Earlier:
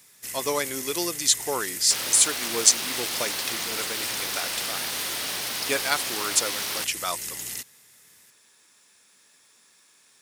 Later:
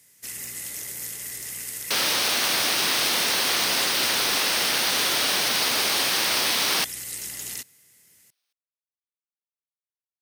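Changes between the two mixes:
speech: muted
second sound +8.5 dB

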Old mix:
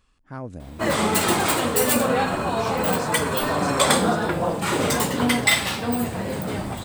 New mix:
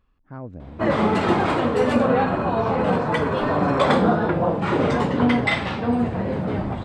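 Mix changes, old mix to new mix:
background +4.5 dB
master: add head-to-tape spacing loss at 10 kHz 35 dB

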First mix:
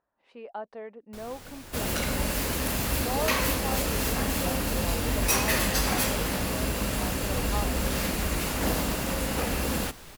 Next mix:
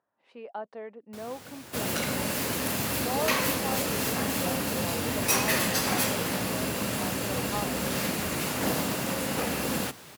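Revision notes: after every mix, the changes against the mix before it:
master: add high-pass filter 100 Hz 24 dB per octave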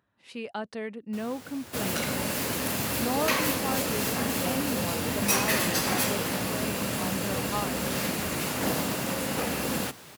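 speech: remove resonant band-pass 710 Hz, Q 1.3

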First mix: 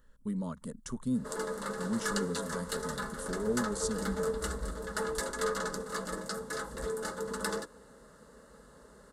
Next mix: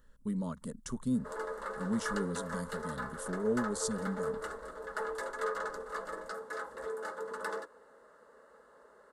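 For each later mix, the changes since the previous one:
background: add three-way crossover with the lows and the highs turned down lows −22 dB, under 370 Hz, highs −14 dB, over 2,300 Hz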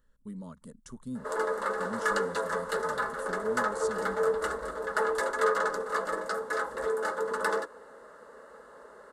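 speech −6.5 dB
background +9.0 dB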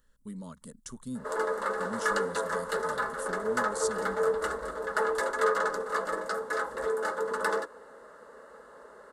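speech: add high-shelf EQ 2,100 Hz +8.5 dB

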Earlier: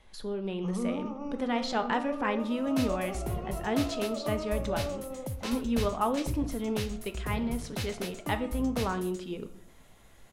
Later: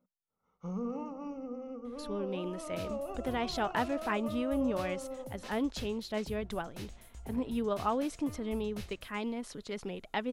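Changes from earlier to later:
speech: entry +1.85 s
second sound −11.0 dB
reverb: off

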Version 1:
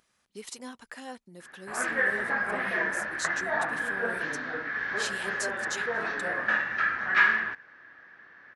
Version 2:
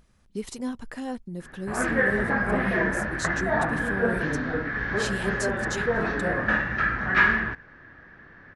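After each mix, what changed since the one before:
master: remove high-pass filter 1,100 Hz 6 dB per octave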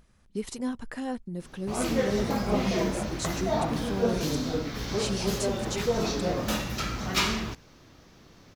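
background: remove low-pass with resonance 1,700 Hz, resonance Q 13

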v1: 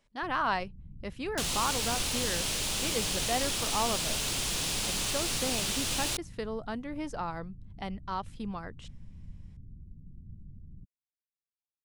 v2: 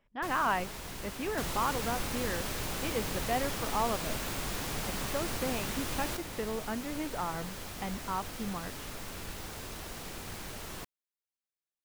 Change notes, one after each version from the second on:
speech: add Savitzky-Golay smoothing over 25 samples
first sound: remove inverse Chebyshev low-pass filter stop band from 1,100 Hz, stop band 80 dB
second sound: add flat-topped bell 5,200 Hz −10.5 dB 2.3 octaves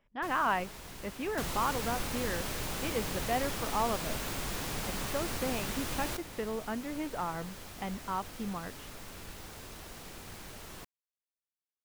first sound −4.5 dB

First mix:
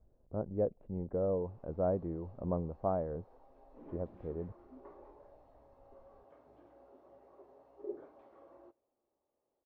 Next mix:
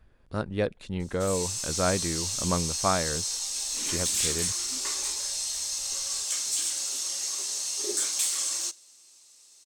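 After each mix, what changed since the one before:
master: remove transistor ladder low-pass 810 Hz, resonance 35%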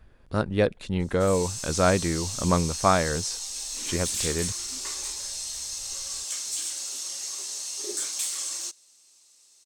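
speech +5.0 dB
background: send −11.5 dB

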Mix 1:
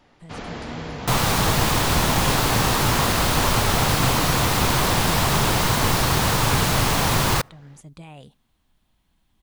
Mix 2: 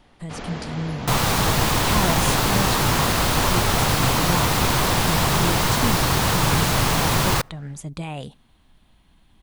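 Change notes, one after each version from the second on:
speech +10.5 dB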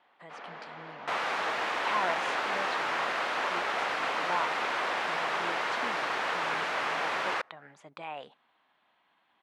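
first sound −4.5 dB
second sound: add graphic EQ with 10 bands 125 Hz −8 dB, 1,000 Hz −7 dB, 4,000 Hz −3 dB
master: add band-pass filter 770–2,000 Hz

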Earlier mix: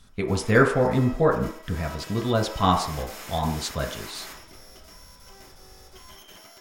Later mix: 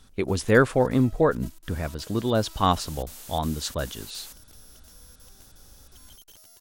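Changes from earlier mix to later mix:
background: add parametric band 2,200 Hz −5.5 dB 0.79 octaves
reverb: off

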